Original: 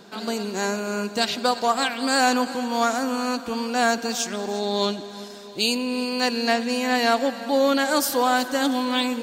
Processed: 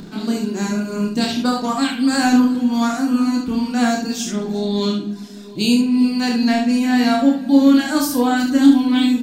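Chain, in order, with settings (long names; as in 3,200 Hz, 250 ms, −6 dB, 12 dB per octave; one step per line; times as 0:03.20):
reverb reduction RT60 1.2 s
upward compression, threshold −39 dBFS
low shelf with overshoot 360 Hz +11.5 dB, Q 1.5
ambience of single reflections 29 ms −3 dB, 71 ms −4.5 dB
rectangular room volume 170 cubic metres, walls mixed, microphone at 0.44 metres
level −2 dB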